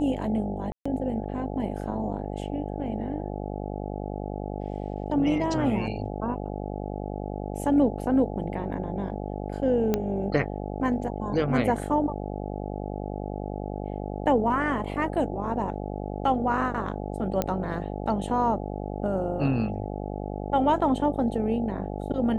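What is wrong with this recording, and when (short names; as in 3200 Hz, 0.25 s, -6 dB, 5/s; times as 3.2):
buzz 50 Hz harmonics 17 -33 dBFS
0.72–0.85 gap 0.135 s
9.94 pop -11 dBFS
17.42 pop -11 dBFS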